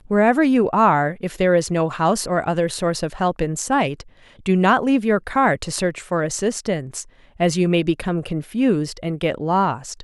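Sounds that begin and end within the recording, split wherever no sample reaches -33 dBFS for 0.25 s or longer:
4.46–7.03 s

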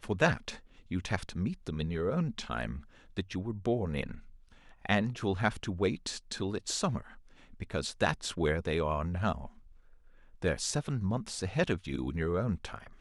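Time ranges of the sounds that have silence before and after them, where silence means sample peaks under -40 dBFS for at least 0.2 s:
0.91–2.79 s
3.17–4.19 s
4.85–7.01 s
7.60–9.48 s

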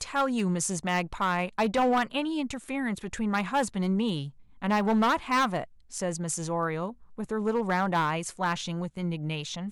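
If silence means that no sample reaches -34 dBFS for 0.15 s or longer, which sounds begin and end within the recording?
4.62–5.64 s
5.94–6.90 s

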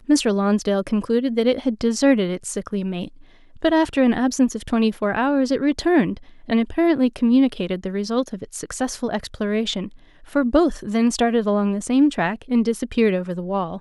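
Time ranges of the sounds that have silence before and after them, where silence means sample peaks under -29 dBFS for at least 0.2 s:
3.62–6.17 s
6.49–9.88 s

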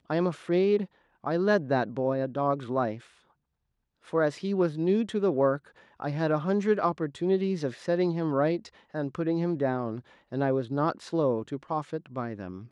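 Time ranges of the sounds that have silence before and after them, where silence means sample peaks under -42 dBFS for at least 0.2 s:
1.24–2.99 s
4.08–5.58 s
6.00–8.68 s
8.94–10.00 s

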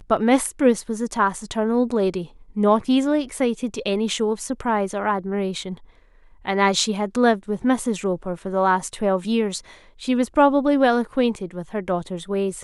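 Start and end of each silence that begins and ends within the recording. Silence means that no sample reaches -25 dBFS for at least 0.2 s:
2.22–2.57 s
5.73–6.47 s
9.58–10.04 s

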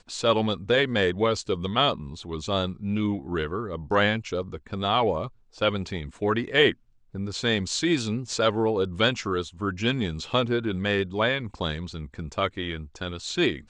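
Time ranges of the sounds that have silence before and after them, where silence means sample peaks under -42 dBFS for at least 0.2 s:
5.55–6.73 s

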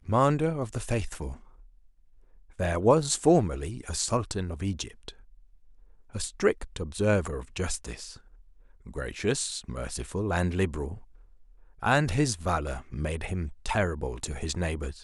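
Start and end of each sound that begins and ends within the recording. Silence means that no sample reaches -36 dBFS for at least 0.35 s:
2.60–5.09 s
6.15–8.17 s
8.87–10.97 s

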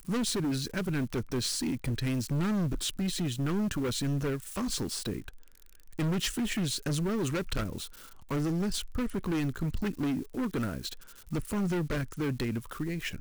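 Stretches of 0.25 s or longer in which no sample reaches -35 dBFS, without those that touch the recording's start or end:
5.29–5.99 s
7.85–8.31 s
10.93–11.32 s

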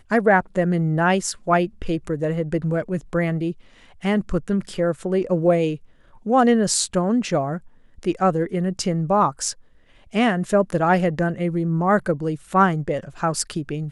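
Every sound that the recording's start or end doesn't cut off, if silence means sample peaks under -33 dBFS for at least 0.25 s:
4.03–5.76 s
6.26–7.58 s
7.99–9.52 s

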